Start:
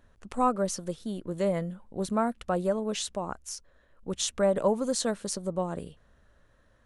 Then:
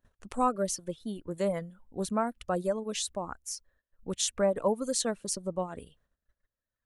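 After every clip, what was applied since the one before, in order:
noise gate −58 dBFS, range −17 dB
reverb reduction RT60 1.3 s
high-shelf EQ 8,900 Hz +7.5 dB
level −1.5 dB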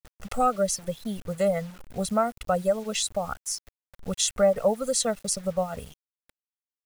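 comb filter 1.5 ms, depth 92%
in parallel at +0.5 dB: downward compressor 5 to 1, threshold −36 dBFS, peak gain reduction 16.5 dB
on the sum: bit reduction 8 bits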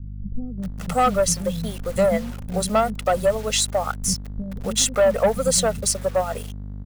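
mains hum 50 Hz, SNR 12 dB
leveller curve on the samples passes 2
multiband delay without the direct sound lows, highs 580 ms, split 250 Hz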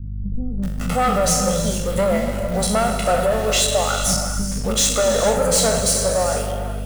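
peak hold with a decay on every bin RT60 0.49 s
soft clipping −16 dBFS, distortion −12 dB
reverb whose tail is shaped and stops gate 490 ms flat, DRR 4.5 dB
level +3 dB

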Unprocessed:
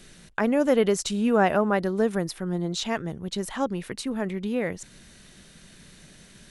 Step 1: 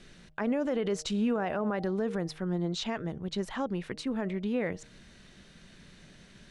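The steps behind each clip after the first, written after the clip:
Bessel low-pass filter 4,500 Hz, order 2
hum removal 155 Hz, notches 5
brickwall limiter −18.5 dBFS, peak gain reduction 10.5 dB
level −2.5 dB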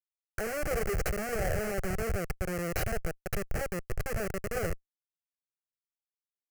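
Bessel high-pass filter 260 Hz, order 6
comparator with hysteresis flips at −32.5 dBFS
phaser with its sweep stopped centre 980 Hz, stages 6
level +9 dB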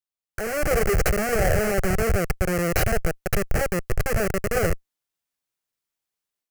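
automatic gain control gain up to 10 dB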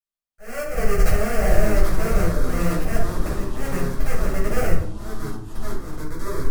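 volume swells 181 ms
delay with pitch and tempo change per echo 510 ms, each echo −4 semitones, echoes 3, each echo −6 dB
rectangular room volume 420 cubic metres, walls furnished, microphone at 6.5 metres
level −11.5 dB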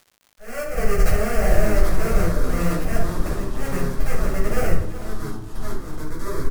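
surface crackle 220 per second −41 dBFS
single-tap delay 371 ms −15 dB

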